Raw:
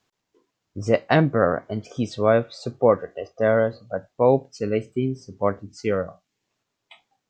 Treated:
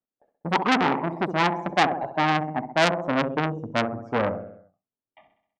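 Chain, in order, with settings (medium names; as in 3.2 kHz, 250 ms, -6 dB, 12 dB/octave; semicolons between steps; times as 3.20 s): gliding tape speed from 173% -> 88%; gate with hold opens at -51 dBFS; Bessel low-pass 800 Hz, order 2; peaking EQ 260 Hz +5.5 dB 0.36 oct; on a send: feedback delay 65 ms, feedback 54%, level -11 dB; on the sum: transformer saturation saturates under 2.9 kHz; trim +4.5 dB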